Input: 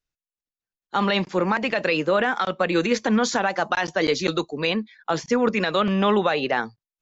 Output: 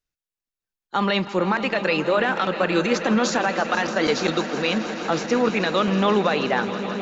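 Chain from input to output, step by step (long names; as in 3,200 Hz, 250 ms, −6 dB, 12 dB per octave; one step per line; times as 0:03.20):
echo that builds up and dies away 160 ms, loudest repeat 5, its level −16 dB
on a send at −17.5 dB: convolution reverb RT60 3.0 s, pre-delay 95 ms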